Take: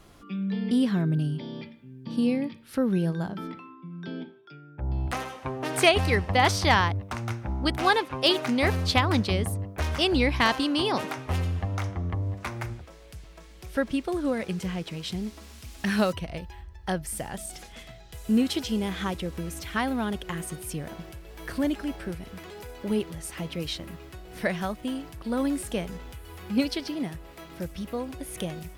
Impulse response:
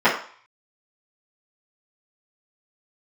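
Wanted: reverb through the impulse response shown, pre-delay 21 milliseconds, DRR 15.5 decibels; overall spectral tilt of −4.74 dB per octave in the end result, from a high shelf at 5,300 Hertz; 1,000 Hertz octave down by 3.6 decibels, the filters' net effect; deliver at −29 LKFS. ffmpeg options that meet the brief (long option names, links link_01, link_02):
-filter_complex "[0:a]equalizer=frequency=1000:width_type=o:gain=-4.5,highshelf=frequency=5300:gain=-8.5,asplit=2[link_01][link_02];[1:a]atrim=start_sample=2205,adelay=21[link_03];[link_02][link_03]afir=irnorm=-1:irlink=0,volume=-38dB[link_04];[link_01][link_04]amix=inputs=2:normalize=0"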